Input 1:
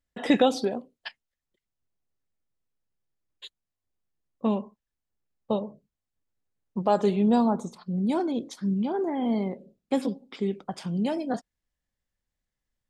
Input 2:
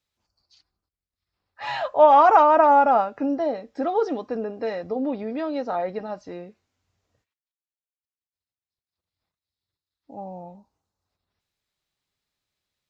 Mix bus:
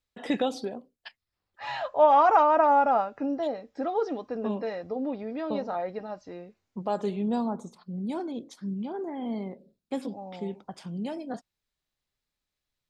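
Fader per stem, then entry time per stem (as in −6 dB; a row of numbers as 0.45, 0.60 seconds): −6.5, −5.0 decibels; 0.00, 0.00 seconds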